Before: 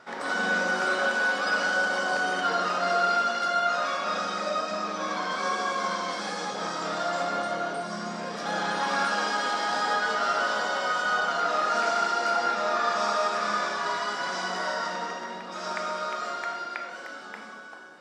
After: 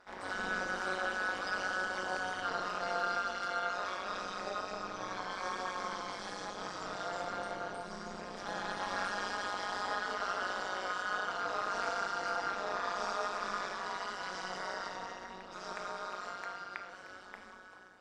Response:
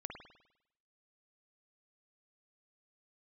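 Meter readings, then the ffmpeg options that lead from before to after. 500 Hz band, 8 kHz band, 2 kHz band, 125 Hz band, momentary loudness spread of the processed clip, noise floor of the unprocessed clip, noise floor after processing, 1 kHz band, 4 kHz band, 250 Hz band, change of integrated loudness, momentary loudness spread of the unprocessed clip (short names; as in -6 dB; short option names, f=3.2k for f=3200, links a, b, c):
-10.5 dB, -10.0 dB, -10.0 dB, -9.0 dB, 9 LU, -41 dBFS, -51 dBFS, -10.0 dB, -10.0 dB, -10.5 dB, -10.0 dB, 9 LU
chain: -af "tremolo=f=190:d=0.974,volume=-6dB"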